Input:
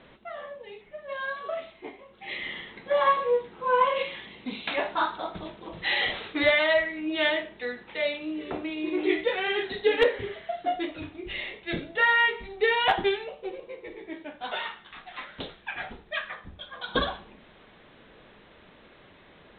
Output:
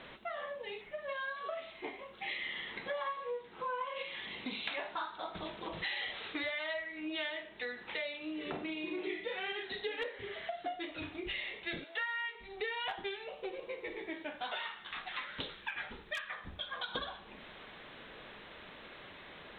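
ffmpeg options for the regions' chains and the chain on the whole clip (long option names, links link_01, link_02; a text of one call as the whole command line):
ffmpeg -i in.wav -filter_complex "[0:a]asettb=1/sr,asplit=3[link_01][link_02][link_03];[link_01]atrim=end=8.454[link_04];[link_02]atrim=start=8.45:end=9.53,asetpts=PTS-STARTPTS,afade=type=in:duration=0.004:curve=qsin,afade=type=out:start_time=1.076:duration=0.004:curve=qsin,equalizer=frequency=170:width=1.5:gain=9,asplit=2[link_05][link_06];[link_06]adelay=44,volume=-5.5dB[link_07];[link_05][link_07]amix=inputs=2:normalize=0,atrim=end_sample=47628[link_08];[link_03]atrim=start=9.526[link_09];[link_04][link_08]acrossfade=duration=0.004:curve1=hsin:curve2=qsin[link_10];[link_10][link_09]acrossfade=duration=0.004:curve1=qsin:curve2=hsin,asettb=1/sr,asplit=3[link_11][link_12][link_13];[link_11]atrim=end=11.844[link_14];[link_12]atrim=start=11.84:end=12.35,asetpts=PTS-STARTPTS,afade=type=in:duration=0.004:curve=qsin,afade=type=out:start_time=0.506:duration=0.004:curve=qsin,highpass=720,asplit=2[link_15][link_16];[link_16]adelay=15,volume=-14dB[link_17];[link_15][link_17]amix=inputs=2:normalize=0,atrim=end_sample=22491[link_18];[link_13]atrim=start=12.346[link_19];[link_14][link_18]acrossfade=duration=0.004:curve1=hsin:curve2=qsin[link_20];[link_20][link_19]acrossfade=duration=0.004:curve1=qsin:curve2=hsin,asettb=1/sr,asplit=3[link_21][link_22][link_23];[link_21]atrim=end=15.084[link_24];[link_22]atrim=start=15.08:end=16.3,asetpts=PTS-STARTPTS,afade=type=in:duration=0.004:curve=qsin,afade=type=out:start_time=1.216:duration=0.004:curve=qsin,equalizer=frequency=710:width=7.1:gain=-12,aeval=exprs='0.075*(abs(mod(val(0)/0.075+3,4)-2)-1)':channel_layout=same[link_25];[link_23]atrim=start=16.296[link_26];[link_24][link_25]acrossfade=duration=0.004:curve1=hsin:curve2=qsin[link_27];[link_27][link_26]acrossfade=duration=0.004:curve1=qsin:curve2=hsin,tiltshelf=frequency=650:gain=-4,acompressor=threshold=-39dB:ratio=6,volume=1.5dB" out.wav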